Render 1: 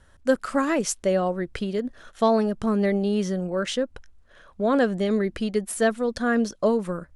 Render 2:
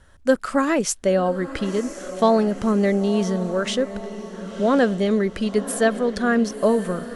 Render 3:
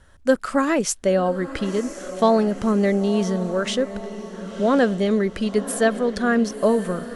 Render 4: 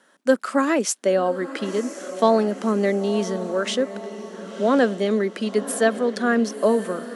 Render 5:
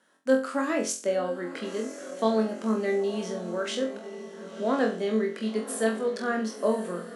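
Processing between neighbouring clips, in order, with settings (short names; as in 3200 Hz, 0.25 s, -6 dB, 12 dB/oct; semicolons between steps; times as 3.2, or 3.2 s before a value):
diffused feedback echo 1.032 s, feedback 50%, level -13 dB; gain +3 dB
nothing audible
steep high-pass 210 Hz 36 dB/oct
flutter echo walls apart 3.9 m, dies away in 0.35 s; gain -8.5 dB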